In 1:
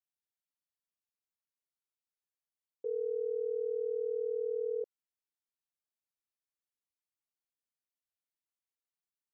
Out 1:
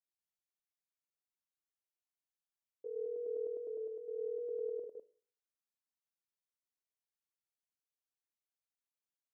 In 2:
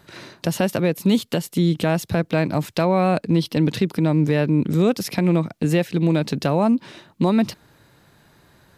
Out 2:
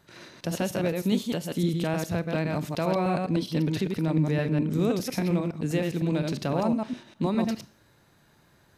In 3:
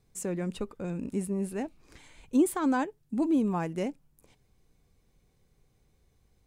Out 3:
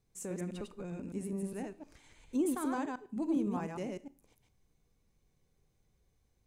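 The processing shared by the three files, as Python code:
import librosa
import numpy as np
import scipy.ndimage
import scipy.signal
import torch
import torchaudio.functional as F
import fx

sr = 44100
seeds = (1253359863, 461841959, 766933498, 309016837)

y = fx.reverse_delay(x, sr, ms=102, wet_db=-3.0)
y = fx.peak_eq(y, sr, hz=6200.0, db=3.5, octaves=0.25)
y = fx.rev_schroeder(y, sr, rt60_s=0.47, comb_ms=25, drr_db=16.5)
y = y * 10.0 ** (-8.5 / 20.0)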